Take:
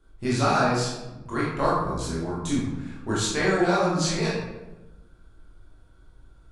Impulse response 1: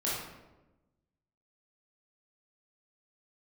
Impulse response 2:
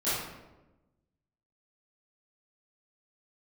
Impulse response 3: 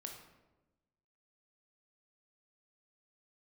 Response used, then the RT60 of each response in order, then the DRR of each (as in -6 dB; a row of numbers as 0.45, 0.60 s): 1; 1.1, 1.1, 1.1 s; -8.0, -15.0, 2.0 dB